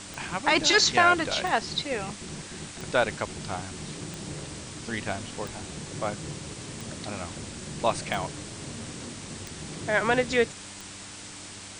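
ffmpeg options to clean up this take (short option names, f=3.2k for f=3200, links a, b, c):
-af "adeclick=t=4,bandreject=f=98.8:t=h:w=4,bandreject=f=197.6:t=h:w=4,bandreject=f=296.4:t=h:w=4,bandreject=f=7.7k:w=30,afftdn=nr=29:nf=-42"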